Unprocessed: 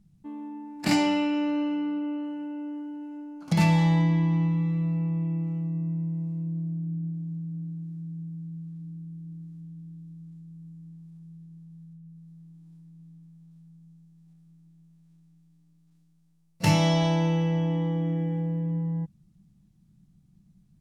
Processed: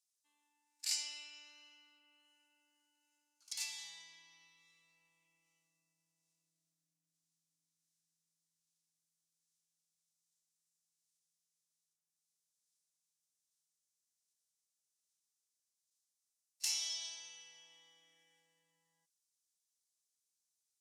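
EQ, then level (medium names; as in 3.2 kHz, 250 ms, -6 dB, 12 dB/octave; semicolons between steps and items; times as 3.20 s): band-pass filter 6.2 kHz, Q 1.2; differentiator; +2.0 dB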